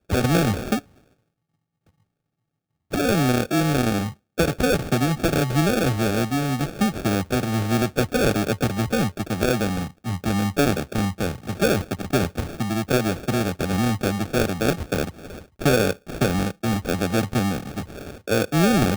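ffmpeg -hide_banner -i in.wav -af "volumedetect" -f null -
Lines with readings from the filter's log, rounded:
mean_volume: -22.9 dB
max_volume: -7.7 dB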